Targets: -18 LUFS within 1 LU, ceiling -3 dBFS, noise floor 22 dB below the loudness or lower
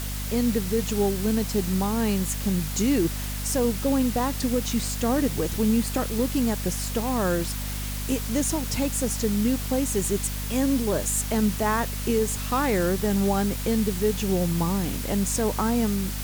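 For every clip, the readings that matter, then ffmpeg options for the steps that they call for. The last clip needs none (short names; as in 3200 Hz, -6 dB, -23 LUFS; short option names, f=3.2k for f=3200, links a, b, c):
hum 50 Hz; harmonics up to 250 Hz; hum level -29 dBFS; noise floor -31 dBFS; noise floor target -47 dBFS; loudness -25.0 LUFS; peak -11.5 dBFS; loudness target -18.0 LUFS
-> -af "bandreject=f=50:t=h:w=6,bandreject=f=100:t=h:w=6,bandreject=f=150:t=h:w=6,bandreject=f=200:t=h:w=6,bandreject=f=250:t=h:w=6"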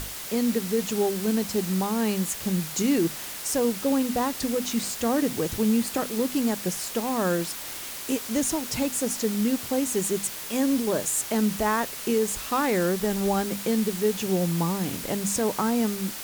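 hum none; noise floor -36 dBFS; noise floor target -48 dBFS
-> -af "afftdn=nr=12:nf=-36"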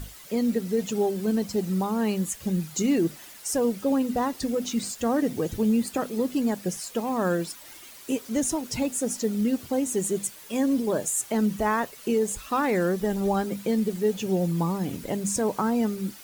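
noise floor -46 dBFS; noise floor target -49 dBFS
-> -af "afftdn=nr=6:nf=-46"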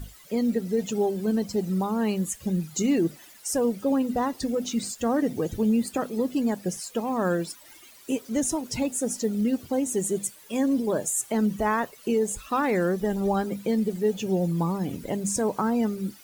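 noise floor -51 dBFS; loudness -26.5 LUFS; peak -14.0 dBFS; loudness target -18.0 LUFS
-> -af "volume=8.5dB"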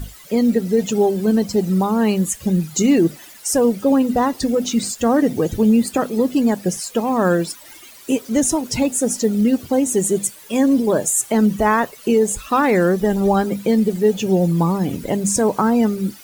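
loudness -18.0 LUFS; peak -5.5 dBFS; noise floor -42 dBFS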